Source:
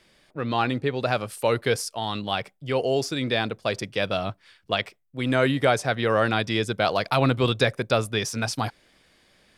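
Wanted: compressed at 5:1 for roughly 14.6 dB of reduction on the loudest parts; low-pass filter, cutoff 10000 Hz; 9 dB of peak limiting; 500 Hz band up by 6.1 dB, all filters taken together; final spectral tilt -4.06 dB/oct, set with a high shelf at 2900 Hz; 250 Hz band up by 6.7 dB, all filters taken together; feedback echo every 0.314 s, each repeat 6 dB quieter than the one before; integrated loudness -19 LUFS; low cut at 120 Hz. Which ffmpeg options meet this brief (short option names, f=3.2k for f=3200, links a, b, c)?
-af "highpass=120,lowpass=10k,equalizer=f=250:t=o:g=6.5,equalizer=f=500:t=o:g=5.5,highshelf=f=2.9k:g=8,acompressor=threshold=-28dB:ratio=5,alimiter=limit=-21.5dB:level=0:latency=1,aecho=1:1:314|628|942|1256|1570|1884:0.501|0.251|0.125|0.0626|0.0313|0.0157,volume=13.5dB"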